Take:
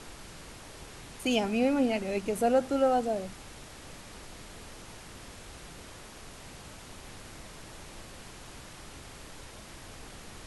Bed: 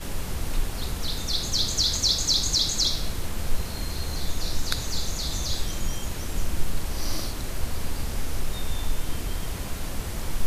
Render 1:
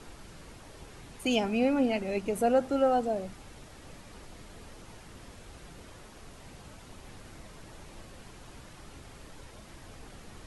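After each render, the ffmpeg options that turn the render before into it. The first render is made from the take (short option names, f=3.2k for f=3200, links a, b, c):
-af "afftdn=nr=6:nf=-48"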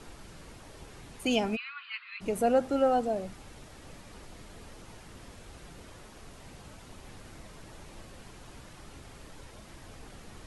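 -filter_complex "[0:a]asplit=3[a][b][c];[a]afade=t=out:st=1.55:d=0.02[d];[b]asuperpass=centerf=2200:order=20:qfactor=0.65,afade=t=in:st=1.55:d=0.02,afade=t=out:st=2.2:d=0.02[e];[c]afade=t=in:st=2.2:d=0.02[f];[d][e][f]amix=inputs=3:normalize=0"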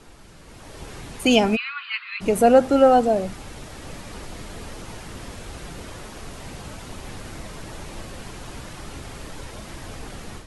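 -af "dynaudnorm=f=450:g=3:m=12dB"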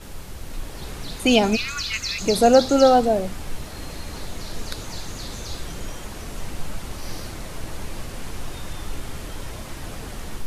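-filter_complex "[1:a]volume=-6.5dB[a];[0:a][a]amix=inputs=2:normalize=0"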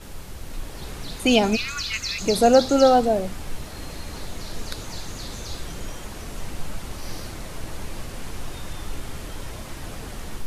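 -af "volume=-1dB"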